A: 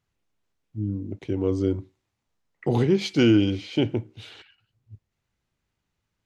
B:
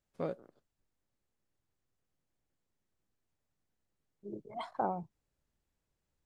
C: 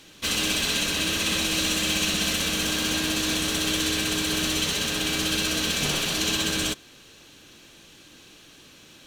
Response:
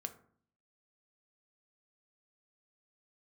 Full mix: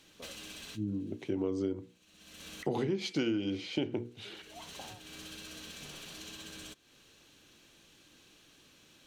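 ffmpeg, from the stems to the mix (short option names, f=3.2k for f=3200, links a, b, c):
-filter_complex "[0:a]highpass=160,bandreject=f=60:t=h:w=6,bandreject=f=120:t=h:w=6,bandreject=f=180:t=h:w=6,bandreject=f=240:t=h:w=6,bandreject=f=300:t=h:w=6,bandreject=f=360:t=h:w=6,bandreject=f=420:t=h:w=6,bandreject=f=480:t=h:w=6,volume=-2.5dB,asplit=2[a][b];[1:a]acompressor=threshold=-41dB:ratio=6,highpass=310,volume=-6dB[c];[2:a]acompressor=threshold=-37dB:ratio=3,volume=-11dB[d];[b]apad=whole_len=399561[e];[d][e]sidechaincompress=threshold=-57dB:ratio=12:attack=16:release=344[f];[a][c][f]amix=inputs=3:normalize=0,acompressor=threshold=-28dB:ratio=12"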